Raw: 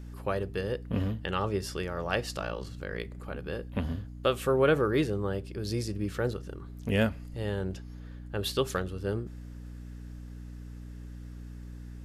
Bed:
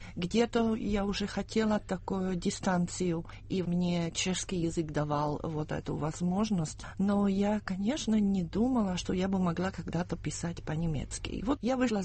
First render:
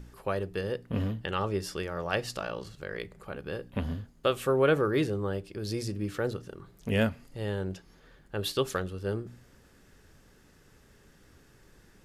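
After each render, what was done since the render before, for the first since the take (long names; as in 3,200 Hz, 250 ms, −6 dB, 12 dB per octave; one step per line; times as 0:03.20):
hum removal 60 Hz, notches 5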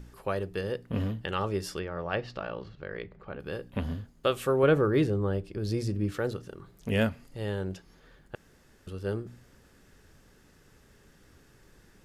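0:01.79–0:03.40: high-frequency loss of the air 250 metres
0:04.63–0:06.12: spectral tilt −1.5 dB per octave
0:08.35–0:08.87: fill with room tone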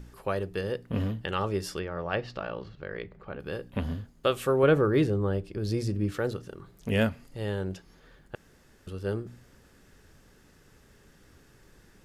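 level +1 dB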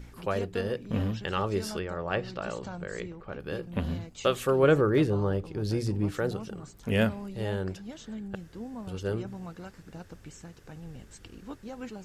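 mix in bed −11.5 dB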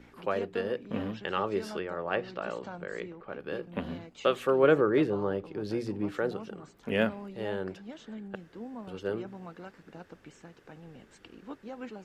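three-way crossover with the lows and the highs turned down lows −16 dB, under 190 Hz, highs −12 dB, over 3,700 Hz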